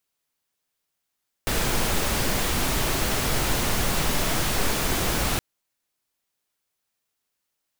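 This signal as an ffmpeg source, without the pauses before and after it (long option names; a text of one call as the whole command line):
ffmpeg -f lavfi -i "anoisesrc=color=pink:amplitude=0.343:duration=3.92:sample_rate=44100:seed=1" out.wav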